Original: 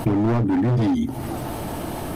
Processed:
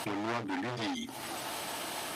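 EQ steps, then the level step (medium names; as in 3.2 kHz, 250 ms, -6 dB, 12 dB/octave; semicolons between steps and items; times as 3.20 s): band-pass filter 4.4 kHz, Q 0.6; +3.0 dB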